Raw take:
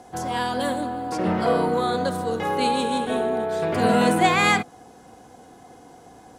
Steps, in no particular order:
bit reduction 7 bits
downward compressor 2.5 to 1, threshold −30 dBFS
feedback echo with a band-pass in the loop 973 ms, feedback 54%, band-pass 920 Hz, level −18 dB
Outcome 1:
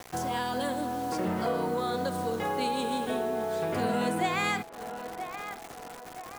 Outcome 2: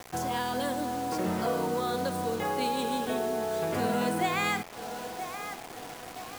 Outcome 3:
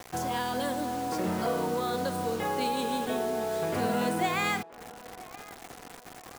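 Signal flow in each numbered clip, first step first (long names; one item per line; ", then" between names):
bit reduction, then feedback echo with a band-pass in the loop, then downward compressor
feedback echo with a band-pass in the loop, then downward compressor, then bit reduction
downward compressor, then bit reduction, then feedback echo with a band-pass in the loop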